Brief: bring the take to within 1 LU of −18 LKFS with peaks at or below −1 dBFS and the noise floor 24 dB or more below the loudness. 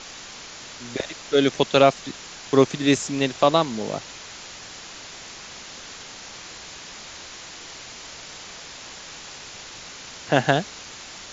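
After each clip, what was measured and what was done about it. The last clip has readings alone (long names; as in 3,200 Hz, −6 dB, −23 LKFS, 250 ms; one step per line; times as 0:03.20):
background noise floor −41 dBFS; target noise floor −46 dBFS; integrated loudness −21.5 LKFS; sample peak −1.5 dBFS; target loudness −18.0 LKFS
→ broadband denoise 6 dB, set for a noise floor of −41 dBFS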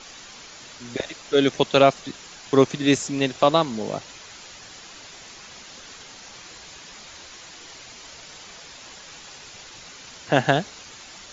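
background noise floor −44 dBFS; target noise floor −46 dBFS
→ broadband denoise 6 dB, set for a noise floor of −44 dBFS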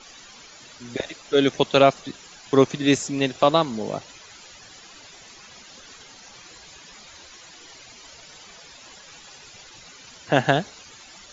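background noise floor −47 dBFS; integrated loudness −21.5 LKFS; sample peak −1.5 dBFS; target loudness −18.0 LKFS
→ level +3.5 dB
brickwall limiter −1 dBFS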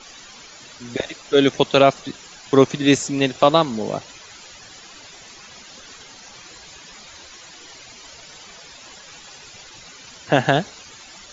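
integrated loudness −18.5 LKFS; sample peak −1.0 dBFS; background noise floor −43 dBFS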